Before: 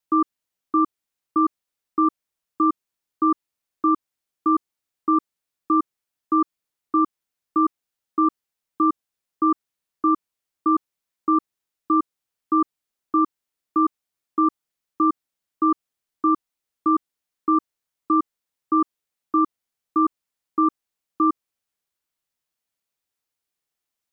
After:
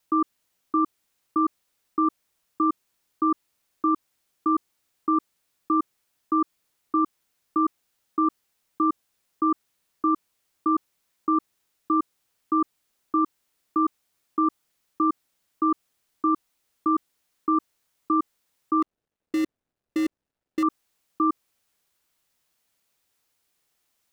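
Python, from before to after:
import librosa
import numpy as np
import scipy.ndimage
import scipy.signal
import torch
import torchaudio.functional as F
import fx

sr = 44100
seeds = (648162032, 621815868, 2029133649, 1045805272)

p1 = fx.median_filter(x, sr, points=41, at=(18.82, 20.63))
p2 = fx.over_compress(p1, sr, threshold_db=-31.0, ratio=-1.0)
p3 = p1 + (p2 * 10.0 ** (1.0 / 20.0))
y = p3 * 10.0 ** (-5.0 / 20.0)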